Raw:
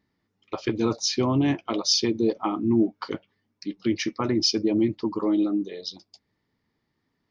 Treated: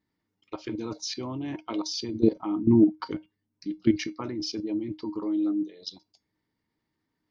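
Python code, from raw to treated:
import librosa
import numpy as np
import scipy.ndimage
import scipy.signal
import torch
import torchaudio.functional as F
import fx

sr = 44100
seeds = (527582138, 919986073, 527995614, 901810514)

y = fx.low_shelf(x, sr, hz=290.0, db=10.5, at=(2.02, 4.07))
y = fx.level_steps(y, sr, step_db=16)
y = fx.comb_fb(y, sr, f0_hz=310.0, decay_s=0.19, harmonics='odd', damping=0.0, mix_pct=70)
y = y * 10.0 ** (8.0 / 20.0)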